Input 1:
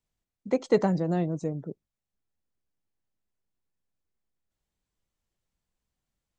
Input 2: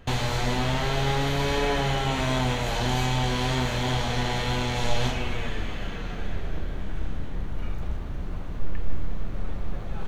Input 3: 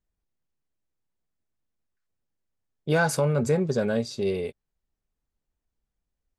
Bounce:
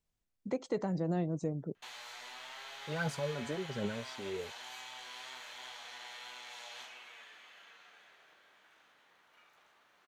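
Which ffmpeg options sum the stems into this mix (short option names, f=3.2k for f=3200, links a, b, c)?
-filter_complex "[0:a]volume=-2dB[a];[1:a]highpass=1.1k,adelay=1750,volume=-15.5dB[b];[2:a]lowpass=7.2k,aphaser=in_gain=1:out_gain=1:delay=3.8:decay=0.63:speed=1.3:type=triangular,volume=-14.5dB[c];[a][b][c]amix=inputs=3:normalize=0,alimiter=limit=-23.5dB:level=0:latency=1:release=305"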